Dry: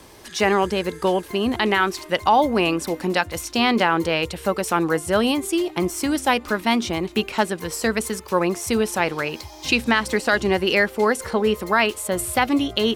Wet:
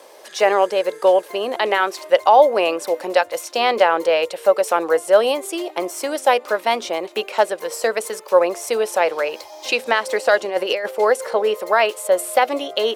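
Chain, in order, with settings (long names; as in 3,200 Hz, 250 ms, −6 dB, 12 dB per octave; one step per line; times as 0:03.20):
0:10.45–0:10.91: compressor whose output falls as the input rises −22 dBFS, ratio −0.5
high-pass with resonance 550 Hz, resonance Q 3.7
level −1 dB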